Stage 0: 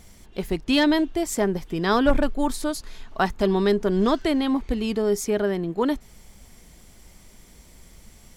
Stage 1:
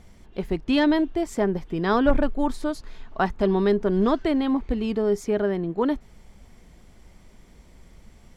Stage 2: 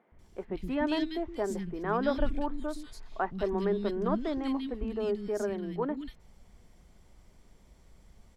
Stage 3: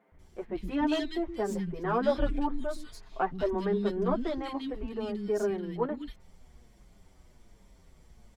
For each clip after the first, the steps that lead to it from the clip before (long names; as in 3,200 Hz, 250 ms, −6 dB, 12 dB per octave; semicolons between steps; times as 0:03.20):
low-pass filter 2,000 Hz 6 dB per octave
three-band delay without the direct sound mids, lows, highs 120/190 ms, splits 250/2,200 Hz; level −7 dB
stylus tracing distortion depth 0.029 ms; barber-pole flanger 7.1 ms −1.3 Hz; level +4 dB